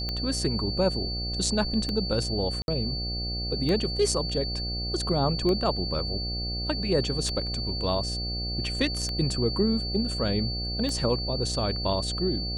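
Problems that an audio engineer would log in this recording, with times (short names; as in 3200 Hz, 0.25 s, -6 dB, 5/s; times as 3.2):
buzz 60 Hz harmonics 13 -33 dBFS
tick 33 1/3 rpm -17 dBFS
tone 4500 Hz -32 dBFS
2.62–2.68 gap 61 ms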